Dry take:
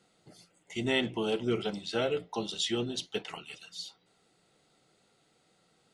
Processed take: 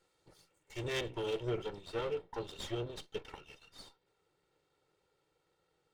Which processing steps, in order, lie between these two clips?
minimum comb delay 2.2 ms; high shelf 3400 Hz -2.5 dB, from 1.5 s -11 dB; gain -5 dB

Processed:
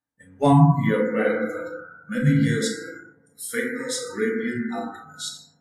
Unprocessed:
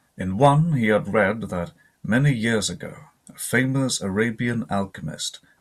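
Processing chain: FDN reverb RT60 2.2 s, low-frequency decay 0.95×, high-frequency decay 0.25×, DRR -4.5 dB; spectral noise reduction 24 dB; dynamic EQ 1400 Hz, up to -5 dB, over -31 dBFS, Q 1.1; gain -5.5 dB

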